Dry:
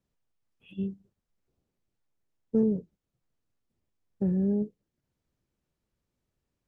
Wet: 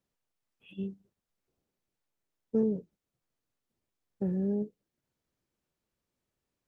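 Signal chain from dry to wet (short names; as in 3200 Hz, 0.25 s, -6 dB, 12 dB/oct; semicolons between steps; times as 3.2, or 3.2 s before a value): low shelf 190 Hz -9 dB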